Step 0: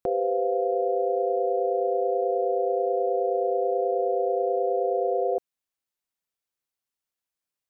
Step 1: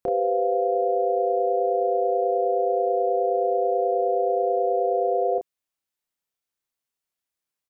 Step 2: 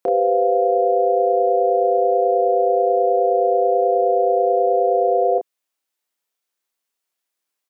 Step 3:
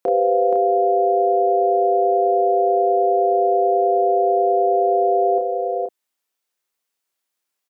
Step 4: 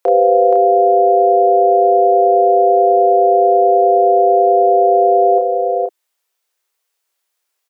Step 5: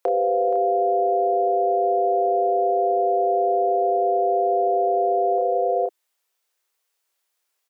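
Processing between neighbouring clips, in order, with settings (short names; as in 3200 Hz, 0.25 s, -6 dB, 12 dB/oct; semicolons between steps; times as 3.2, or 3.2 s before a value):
doubler 30 ms -4.5 dB
HPF 280 Hz; gain +6 dB
echo 0.475 s -5.5 dB
steep high-pass 360 Hz; gain +6.5 dB
limiter -11 dBFS, peak gain reduction 9 dB; gain -2.5 dB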